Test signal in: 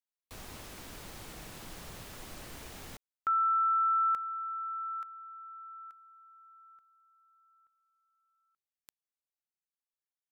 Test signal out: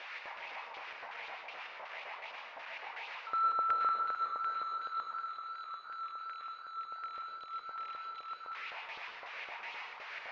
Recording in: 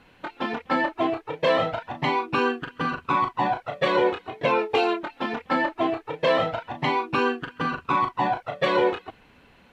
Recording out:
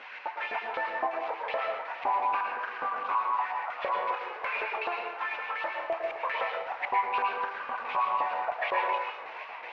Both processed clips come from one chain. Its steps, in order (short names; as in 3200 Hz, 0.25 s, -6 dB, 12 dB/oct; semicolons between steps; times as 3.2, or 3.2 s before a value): delta modulation 32 kbps, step -35.5 dBFS; bell 330 Hz -3.5 dB 0.98 oct; LFO high-pass saw up 3.9 Hz 510–3500 Hz; dynamic EQ 3100 Hz, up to -4 dB, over -47 dBFS, Q 2.8; compressor 2:1, threshold -26 dBFS; LFO low-pass square 2.7 Hz 960–2400 Hz; plate-style reverb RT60 0.76 s, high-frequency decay 0.8×, pre-delay 95 ms, DRR 1 dB; warbling echo 0.461 s, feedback 75%, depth 207 cents, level -19 dB; gain -7.5 dB